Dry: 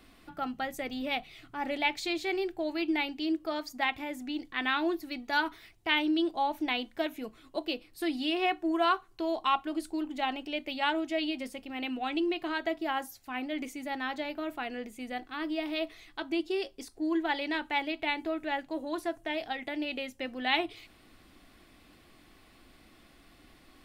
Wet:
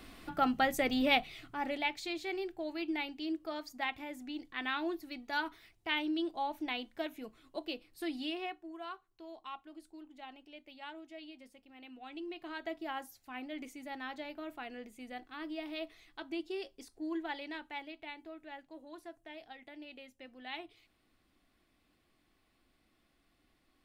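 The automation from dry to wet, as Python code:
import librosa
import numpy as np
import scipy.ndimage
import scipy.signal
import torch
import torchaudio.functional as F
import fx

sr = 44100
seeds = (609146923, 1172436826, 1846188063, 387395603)

y = fx.gain(x, sr, db=fx.line((1.1, 5.0), (1.94, -6.5), (8.25, -6.5), (8.69, -18.0), (11.83, -18.0), (12.72, -8.0), (17.13, -8.0), (18.17, -15.5)))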